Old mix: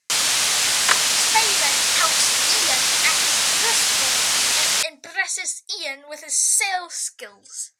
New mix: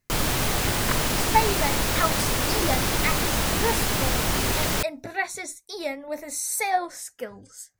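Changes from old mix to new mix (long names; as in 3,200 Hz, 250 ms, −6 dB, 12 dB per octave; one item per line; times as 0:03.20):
first sound: add parametric band 360 Hz +6.5 dB 0.25 octaves
second sound −7.5 dB
master: remove meter weighting curve ITU-R 468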